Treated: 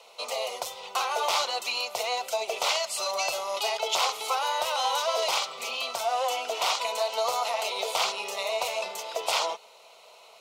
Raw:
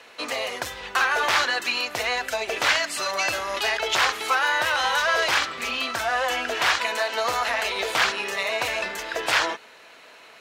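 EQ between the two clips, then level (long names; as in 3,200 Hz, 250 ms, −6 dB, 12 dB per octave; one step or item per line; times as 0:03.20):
high-pass filter 270 Hz 12 dB per octave
phaser with its sweep stopped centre 700 Hz, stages 4
0.0 dB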